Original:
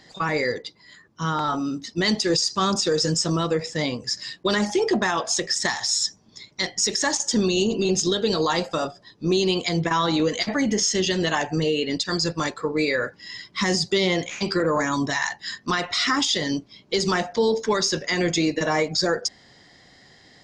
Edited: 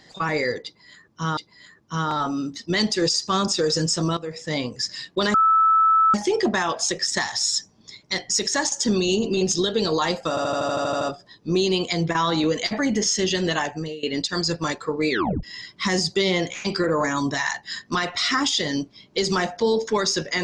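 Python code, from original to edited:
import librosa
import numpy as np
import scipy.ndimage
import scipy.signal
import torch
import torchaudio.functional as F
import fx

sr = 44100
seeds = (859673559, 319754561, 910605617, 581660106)

y = fx.edit(x, sr, fx.repeat(start_s=0.65, length_s=0.72, count=2),
    fx.fade_in_from(start_s=3.45, length_s=0.42, floor_db=-15.0),
    fx.insert_tone(at_s=4.62, length_s=0.8, hz=1310.0, db=-13.5),
    fx.stutter(start_s=8.77, slice_s=0.08, count=10),
    fx.fade_out_to(start_s=11.31, length_s=0.48, floor_db=-19.5),
    fx.tape_stop(start_s=12.86, length_s=0.33), tone=tone)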